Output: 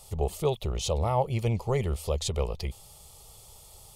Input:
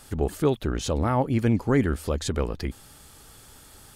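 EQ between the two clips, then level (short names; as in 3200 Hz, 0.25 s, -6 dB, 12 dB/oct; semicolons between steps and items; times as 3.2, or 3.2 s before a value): dynamic EQ 2700 Hz, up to +5 dB, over -47 dBFS, Q 1.1; fixed phaser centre 660 Hz, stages 4; 0.0 dB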